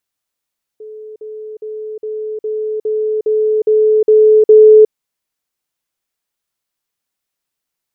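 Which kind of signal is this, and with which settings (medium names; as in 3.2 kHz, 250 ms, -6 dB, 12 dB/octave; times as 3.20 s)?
level ladder 431 Hz -28.5 dBFS, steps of 3 dB, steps 10, 0.36 s 0.05 s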